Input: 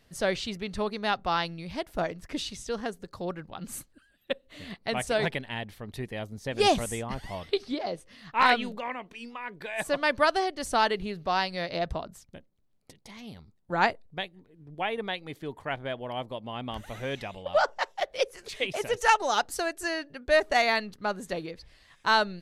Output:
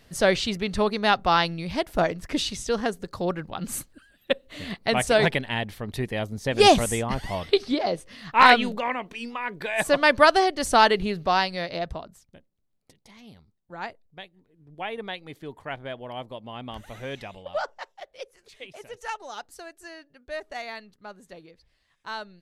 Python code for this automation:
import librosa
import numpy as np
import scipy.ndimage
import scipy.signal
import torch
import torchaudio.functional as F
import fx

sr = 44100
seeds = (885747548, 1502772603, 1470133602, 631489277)

y = fx.gain(x, sr, db=fx.line((11.16, 7.0), (12.22, -4.5), (13.33, -4.5), (13.78, -11.5), (14.96, -1.5), (17.34, -1.5), (18.02, -12.0)))